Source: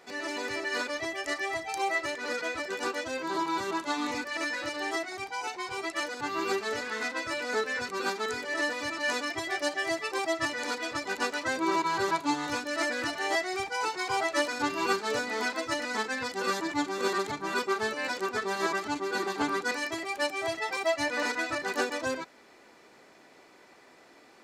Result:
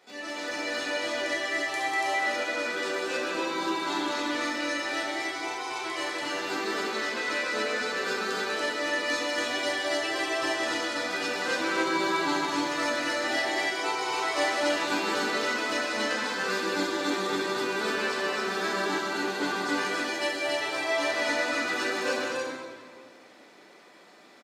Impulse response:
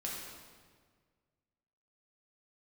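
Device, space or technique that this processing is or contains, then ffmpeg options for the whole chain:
stadium PA: -filter_complex "[0:a]highpass=160,equalizer=f=3500:t=o:w=0.61:g=5,aecho=1:1:195.3|285.7:0.562|0.794[s0];[1:a]atrim=start_sample=2205[s1];[s0][s1]afir=irnorm=-1:irlink=0,volume=0.794"

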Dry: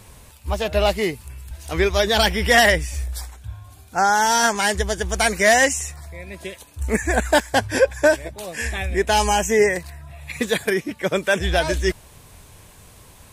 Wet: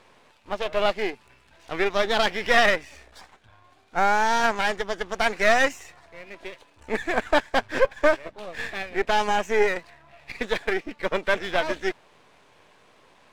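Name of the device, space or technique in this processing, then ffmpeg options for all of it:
crystal radio: -af "highpass=310,lowpass=3100,aeval=exprs='if(lt(val(0),0),0.251*val(0),val(0))':c=same"

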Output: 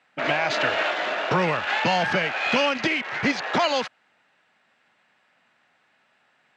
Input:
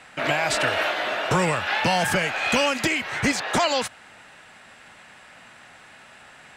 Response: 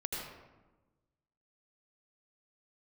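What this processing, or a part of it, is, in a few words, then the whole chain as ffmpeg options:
over-cleaned archive recording: -af "highpass=150,lowpass=5300,afwtdn=0.0178"

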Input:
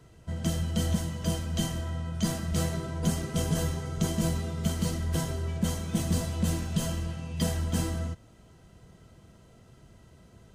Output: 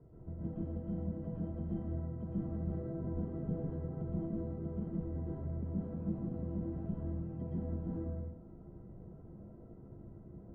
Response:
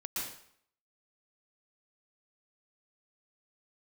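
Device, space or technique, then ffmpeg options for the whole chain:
television next door: -filter_complex "[0:a]acompressor=threshold=0.0112:ratio=4,lowpass=480[s0];[1:a]atrim=start_sample=2205[s1];[s0][s1]afir=irnorm=-1:irlink=0,lowpass=2000,bass=f=250:g=-4,treble=f=4000:g=6,volume=1.68"

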